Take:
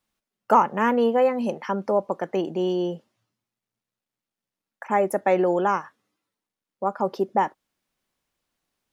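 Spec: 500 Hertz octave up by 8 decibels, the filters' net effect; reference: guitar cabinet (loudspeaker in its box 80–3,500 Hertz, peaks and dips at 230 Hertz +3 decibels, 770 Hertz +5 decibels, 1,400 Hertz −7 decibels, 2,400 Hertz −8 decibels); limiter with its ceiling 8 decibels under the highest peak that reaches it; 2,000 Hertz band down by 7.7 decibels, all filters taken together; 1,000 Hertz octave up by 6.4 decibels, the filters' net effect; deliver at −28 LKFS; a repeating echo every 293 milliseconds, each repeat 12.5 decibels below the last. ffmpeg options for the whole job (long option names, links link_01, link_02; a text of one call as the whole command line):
ffmpeg -i in.wav -af "equalizer=frequency=500:width_type=o:gain=8.5,equalizer=frequency=1000:width_type=o:gain=3,equalizer=frequency=2000:width_type=o:gain=-6.5,alimiter=limit=-9dB:level=0:latency=1,highpass=80,equalizer=frequency=230:width_type=q:width=4:gain=3,equalizer=frequency=770:width_type=q:width=4:gain=5,equalizer=frequency=1400:width_type=q:width=4:gain=-7,equalizer=frequency=2400:width_type=q:width=4:gain=-8,lowpass=frequency=3500:width=0.5412,lowpass=frequency=3500:width=1.3066,aecho=1:1:293|586|879:0.237|0.0569|0.0137,volume=-9dB" out.wav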